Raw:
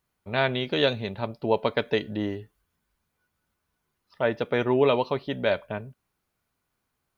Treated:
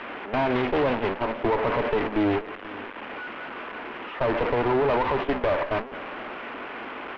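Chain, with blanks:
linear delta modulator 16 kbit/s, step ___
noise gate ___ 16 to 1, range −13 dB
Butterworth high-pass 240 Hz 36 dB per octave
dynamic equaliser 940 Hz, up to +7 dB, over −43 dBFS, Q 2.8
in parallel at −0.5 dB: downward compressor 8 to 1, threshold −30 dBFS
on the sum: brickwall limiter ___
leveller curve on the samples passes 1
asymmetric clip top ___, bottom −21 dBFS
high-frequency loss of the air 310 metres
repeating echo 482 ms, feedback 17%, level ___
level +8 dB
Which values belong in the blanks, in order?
−29.5 dBFS, −31 dBFS, −19 dBFS, −40 dBFS, −20.5 dB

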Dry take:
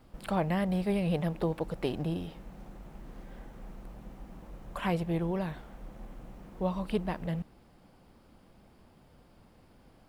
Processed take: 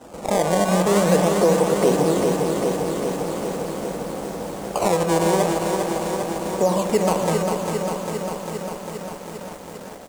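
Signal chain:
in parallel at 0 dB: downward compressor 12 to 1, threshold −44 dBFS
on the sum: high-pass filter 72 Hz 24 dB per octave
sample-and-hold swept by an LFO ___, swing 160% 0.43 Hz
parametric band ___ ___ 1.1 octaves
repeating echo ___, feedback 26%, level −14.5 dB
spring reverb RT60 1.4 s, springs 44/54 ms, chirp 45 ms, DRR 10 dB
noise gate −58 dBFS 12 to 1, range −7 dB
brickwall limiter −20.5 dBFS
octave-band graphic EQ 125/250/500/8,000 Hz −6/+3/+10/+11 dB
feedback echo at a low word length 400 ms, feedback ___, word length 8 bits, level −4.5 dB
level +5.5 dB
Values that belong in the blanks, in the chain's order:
19×, 890 Hz, +6.5 dB, 576 ms, 80%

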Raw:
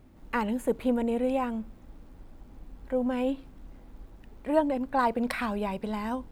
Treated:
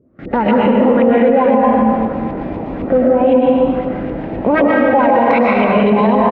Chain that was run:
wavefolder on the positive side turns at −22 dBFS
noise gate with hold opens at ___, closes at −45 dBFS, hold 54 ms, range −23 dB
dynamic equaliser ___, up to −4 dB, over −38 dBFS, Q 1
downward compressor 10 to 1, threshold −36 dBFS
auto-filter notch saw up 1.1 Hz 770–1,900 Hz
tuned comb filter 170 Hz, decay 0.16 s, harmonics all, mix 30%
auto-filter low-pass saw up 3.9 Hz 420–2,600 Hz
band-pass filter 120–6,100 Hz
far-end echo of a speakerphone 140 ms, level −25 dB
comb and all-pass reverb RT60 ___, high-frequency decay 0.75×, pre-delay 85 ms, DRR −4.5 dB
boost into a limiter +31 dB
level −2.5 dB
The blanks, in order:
−44 dBFS, 310 Hz, 1.9 s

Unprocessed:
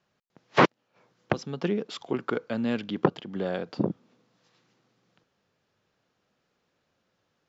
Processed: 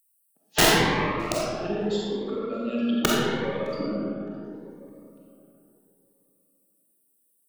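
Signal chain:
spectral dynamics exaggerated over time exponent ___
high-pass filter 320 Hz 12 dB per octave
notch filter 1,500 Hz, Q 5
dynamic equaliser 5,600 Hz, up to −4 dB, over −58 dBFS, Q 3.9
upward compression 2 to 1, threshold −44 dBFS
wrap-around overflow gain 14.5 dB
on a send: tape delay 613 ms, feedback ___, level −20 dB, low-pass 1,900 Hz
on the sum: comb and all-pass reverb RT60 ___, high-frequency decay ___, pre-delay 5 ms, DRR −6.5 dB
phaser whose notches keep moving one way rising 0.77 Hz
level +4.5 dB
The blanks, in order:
2, 37%, 3.1 s, 0.4×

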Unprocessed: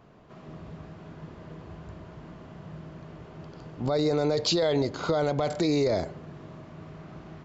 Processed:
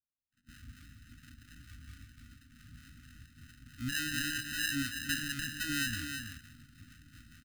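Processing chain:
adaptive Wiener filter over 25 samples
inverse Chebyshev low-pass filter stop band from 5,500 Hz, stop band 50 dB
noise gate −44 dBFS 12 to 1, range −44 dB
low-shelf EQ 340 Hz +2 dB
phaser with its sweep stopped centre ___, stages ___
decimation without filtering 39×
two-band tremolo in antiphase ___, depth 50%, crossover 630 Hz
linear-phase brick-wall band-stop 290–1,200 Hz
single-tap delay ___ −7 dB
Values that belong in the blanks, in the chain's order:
410 Hz, 4, 4.4 Hz, 327 ms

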